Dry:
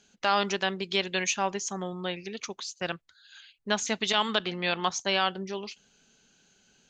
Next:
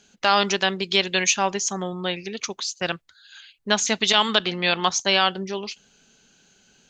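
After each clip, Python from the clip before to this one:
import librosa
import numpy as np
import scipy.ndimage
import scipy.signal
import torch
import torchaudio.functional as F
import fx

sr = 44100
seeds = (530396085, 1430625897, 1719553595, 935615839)

y = fx.dynamic_eq(x, sr, hz=5000.0, q=0.71, threshold_db=-43.0, ratio=4.0, max_db=4)
y = y * librosa.db_to_amplitude(5.5)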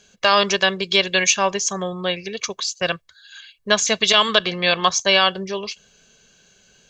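y = x + 0.53 * np.pad(x, (int(1.8 * sr / 1000.0), 0))[:len(x)]
y = y * librosa.db_to_amplitude(2.5)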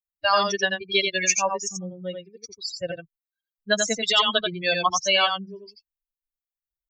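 y = fx.bin_expand(x, sr, power=3.0)
y = y + 10.0 ** (-5.0 / 20.0) * np.pad(y, (int(87 * sr / 1000.0), 0))[:len(y)]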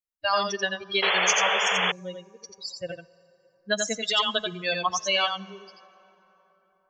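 y = fx.rev_plate(x, sr, seeds[0], rt60_s=4.1, hf_ratio=0.5, predelay_ms=0, drr_db=19.5)
y = fx.spec_paint(y, sr, seeds[1], shape='noise', start_s=1.02, length_s=0.9, low_hz=410.0, high_hz=3500.0, level_db=-20.0)
y = y * librosa.db_to_amplitude(-4.0)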